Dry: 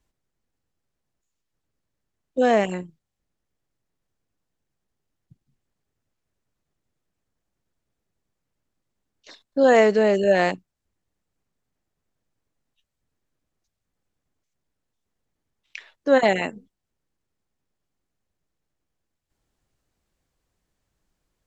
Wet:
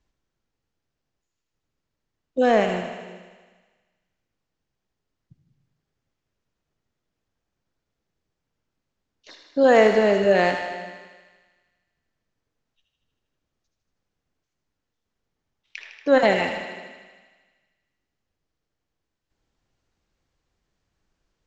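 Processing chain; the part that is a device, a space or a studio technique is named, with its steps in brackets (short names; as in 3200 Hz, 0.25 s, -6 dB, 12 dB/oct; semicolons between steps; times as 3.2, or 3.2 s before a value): LPF 6600 Hz 24 dB/oct; saturated reverb return (on a send at -7 dB: reverb RT60 1.2 s, pre-delay 55 ms + soft clip -22.5 dBFS, distortion -7 dB); on the sum: thinning echo 78 ms, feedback 73%, high-pass 420 Hz, level -8 dB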